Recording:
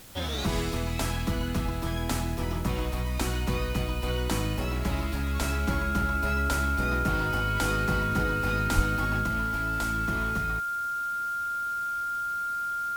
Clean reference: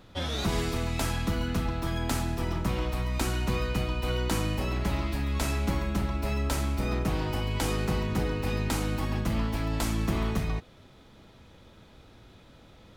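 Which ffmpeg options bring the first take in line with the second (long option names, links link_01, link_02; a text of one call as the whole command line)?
ffmpeg -i in.wav -filter_complex "[0:a]bandreject=frequency=1400:width=30,asplit=3[link_01][link_02][link_03];[link_01]afade=type=out:start_time=8.75:duration=0.02[link_04];[link_02]highpass=frequency=140:width=0.5412,highpass=frequency=140:width=1.3066,afade=type=in:start_time=8.75:duration=0.02,afade=type=out:start_time=8.87:duration=0.02[link_05];[link_03]afade=type=in:start_time=8.87:duration=0.02[link_06];[link_04][link_05][link_06]amix=inputs=3:normalize=0,afwtdn=0.0032,asetnsamples=nb_out_samples=441:pad=0,asendcmd='9.26 volume volume 4dB',volume=0dB" out.wav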